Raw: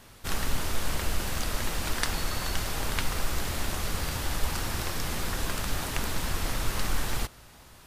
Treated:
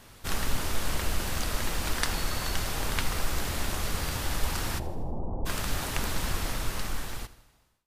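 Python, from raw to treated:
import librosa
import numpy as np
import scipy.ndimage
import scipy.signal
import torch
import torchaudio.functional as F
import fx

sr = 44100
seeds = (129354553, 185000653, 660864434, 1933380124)

y = fx.fade_out_tail(x, sr, length_s=1.57)
y = fx.steep_lowpass(y, sr, hz=900.0, slope=48, at=(4.78, 5.45), fade=0.02)
y = fx.echo_feedback(y, sr, ms=80, feedback_pct=53, wet_db=-17.5)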